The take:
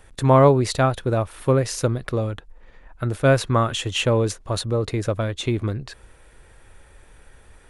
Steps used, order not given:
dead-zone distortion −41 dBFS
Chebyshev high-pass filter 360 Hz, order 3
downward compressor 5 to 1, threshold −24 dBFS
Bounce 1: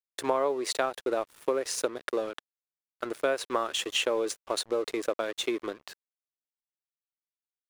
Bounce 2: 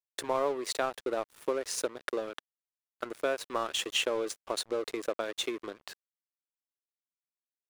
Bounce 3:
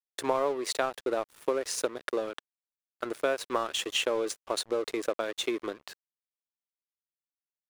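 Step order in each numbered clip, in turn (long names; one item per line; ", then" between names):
Chebyshev high-pass filter, then dead-zone distortion, then downward compressor
downward compressor, then Chebyshev high-pass filter, then dead-zone distortion
Chebyshev high-pass filter, then downward compressor, then dead-zone distortion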